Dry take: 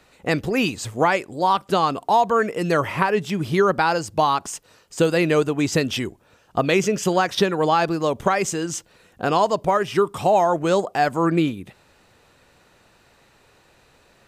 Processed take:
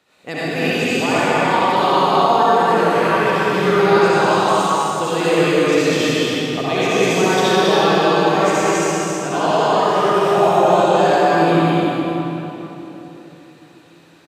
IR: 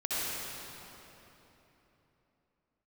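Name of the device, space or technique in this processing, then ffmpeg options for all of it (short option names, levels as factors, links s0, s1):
stadium PA: -filter_complex "[0:a]highpass=140,equalizer=f=3400:t=o:w=0.46:g=4.5,aecho=1:1:204.1|271.1:0.708|0.562[s0];[1:a]atrim=start_sample=2205[s1];[s0][s1]afir=irnorm=-1:irlink=0,volume=0.531"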